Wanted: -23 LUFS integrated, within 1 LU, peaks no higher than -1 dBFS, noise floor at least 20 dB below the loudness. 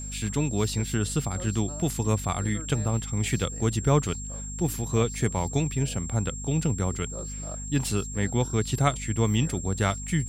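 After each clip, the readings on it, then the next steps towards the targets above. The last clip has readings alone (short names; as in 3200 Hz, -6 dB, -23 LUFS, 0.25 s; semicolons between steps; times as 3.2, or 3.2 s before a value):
hum 50 Hz; harmonics up to 250 Hz; hum level -35 dBFS; steady tone 7500 Hz; tone level -37 dBFS; loudness -27.5 LUFS; peak -8.5 dBFS; loudness target -23.0 LUFS
-> de-hum 50 Hz, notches 5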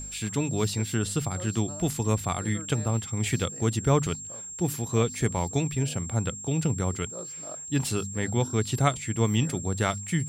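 hum none; steady tone 7500 Hz; tone level -37 dBFS
-> notch 7500 Hz, Q 30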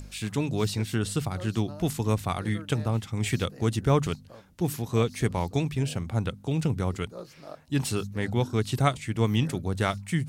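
steady tone none; loudness -28.5 LUFS; peak -8.0 dBFS; loudness target -23.0 LUFS
-> gain +5.5 dB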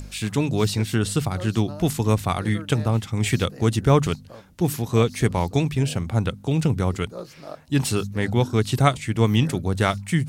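loudness -23.0 LUFS; peak -2.5 dBFS; noise floor -45 dBFS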